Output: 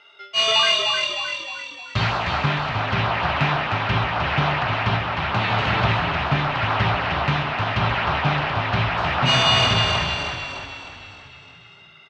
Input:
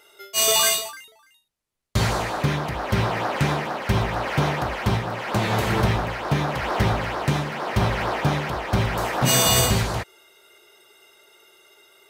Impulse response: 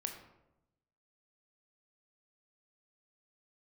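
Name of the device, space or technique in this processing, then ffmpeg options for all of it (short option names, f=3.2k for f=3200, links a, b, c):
frequency-shifting delay pedal into a guitar cabinet: -filter_complex "[0:a]asplit=8[a][b][c][d][e][f][g][h];[b]adelay=308,afreqshift=-38,volume=-4.5dB[i];[c]adelay=616,afreqshift=-76,volume=-10dB[j];[d]adelay=924,afreqshift=-114,volume=-15.5dB[k];[e]adelay=1232,afreqshift=-152,volume=-21dB[l];[f]adelay=1540,afreqshift=-190,volume=-26.6dB[m];[g]adelay=1848,afreqshift=-228,volume=-32.1dB[n];[h]adelay=2156,afreqshift=-266,volume=-37.6dB[o];[a][i][j][k][l][m][n][o]amix=inputs=8:normalize=0,highpass=100,equalizer=f=210:t=q:w=4:g=-7,equalizer=f=340:t=q:w=4:g=-10,equalizer=f=490:t=q:w=4:g=-10,equalizer=f=1.3k:t=q:w=4:g=3,equalizer=f=2.7k:t=q:w=4:g=6,lowpass=f=4.3k:w=0.5412,lowpass=f=4.3k:w=1.3066,volume=2dB"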